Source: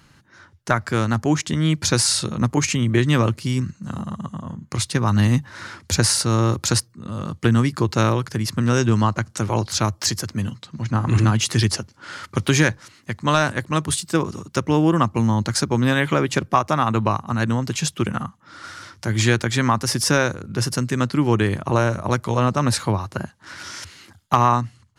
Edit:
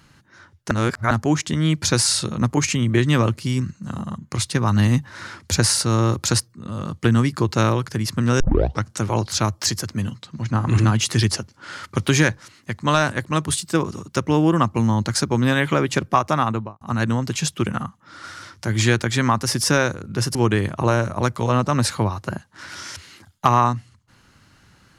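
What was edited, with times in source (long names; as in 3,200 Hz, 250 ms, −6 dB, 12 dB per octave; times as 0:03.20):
0:00.71–0:01.11: reverse
0:04.18–0:04.58: remove
0:08.80: tape start 0.44 s
0:16.79–0:17.21: fade out and dull
0:20.75–0:21.23: remove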